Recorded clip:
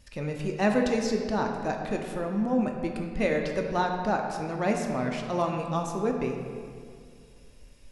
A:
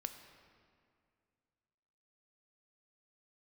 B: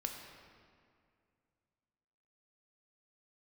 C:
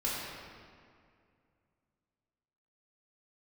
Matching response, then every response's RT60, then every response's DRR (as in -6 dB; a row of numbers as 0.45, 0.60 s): B; 2.2, 2.2, 2.2 s; 6.5, 2.0, -7.5 dB